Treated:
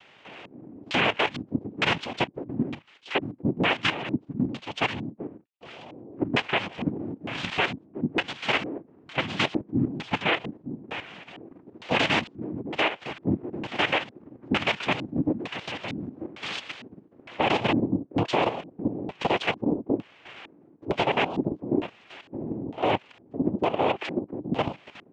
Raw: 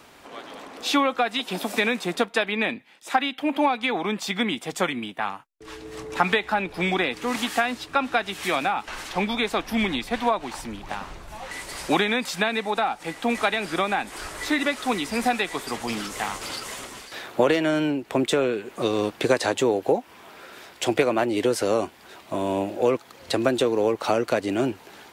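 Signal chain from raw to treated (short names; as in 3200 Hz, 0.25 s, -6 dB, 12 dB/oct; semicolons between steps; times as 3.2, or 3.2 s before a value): noise vocoder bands 4; LFO low-pass square 1.1 Hz 300–3100 Hz; level quantiser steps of 11 dB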